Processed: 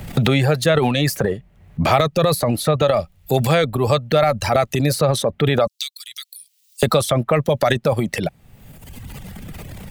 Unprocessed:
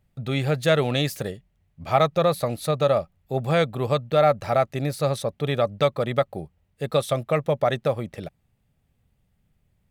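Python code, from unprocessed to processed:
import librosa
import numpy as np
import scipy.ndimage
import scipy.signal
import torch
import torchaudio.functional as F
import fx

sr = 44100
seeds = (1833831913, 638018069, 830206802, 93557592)

y = fx.dereverb_blind(x, sr, rt60_s=1.1)
y = fx.cheby2_highpass(y, sr, hz=760.0, order=4, stop_db=80, at=(5.67, 6.83))
y = fx.transient(y, sr, attack_db=-2, sustain_db=10)
y = fx.band_squash(y, sr, depth_pct=100)
y = y * librosa.db_to_amplitude(5.5)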